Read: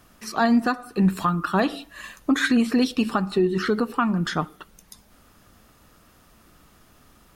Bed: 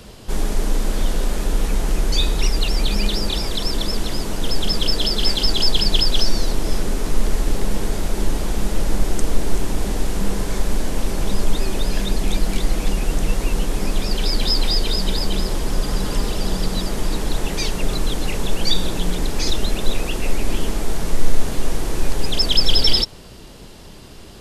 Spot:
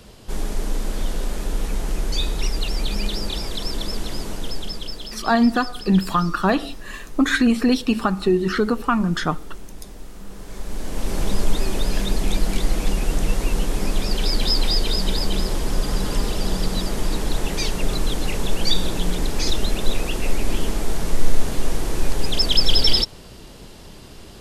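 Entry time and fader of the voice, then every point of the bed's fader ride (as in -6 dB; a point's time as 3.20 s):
4.90 s, +2.5 dB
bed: 4.30 s -4.5 dB
5.28 s -17.5 dB
10.26 s -17.5 dB
11.16 s -1 dB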